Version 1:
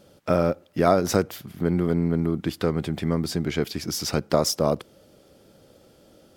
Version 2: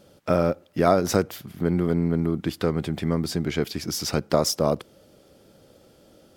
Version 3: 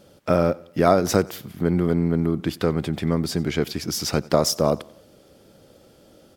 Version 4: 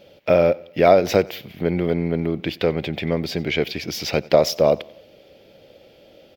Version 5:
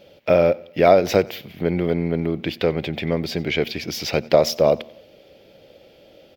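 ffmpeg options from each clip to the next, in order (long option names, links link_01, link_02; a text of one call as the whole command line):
ffmpeg -i in.wav -af anull out.wav
ffmpeg -i in.wav -af "aecho=1:1:92|184|276:0.0708|0.0326|0.015,volume=2dB" out.wav
ffmpeg -i in.wav -af "firequalizer=gain_entry='entry(260,0);entry(560,9);entry(1200,-3);entry(2300,13);entry(8900,-14);entry(15000,4)':delay=0.05:min_phase=1,volume=-2.5dB" out.wav
ffmpeg -i in.wav -af "bandreject=frequency=116.2:width_type=h:width=4,bandreject=frequency=232.4:width_type=h:width=4" out.wav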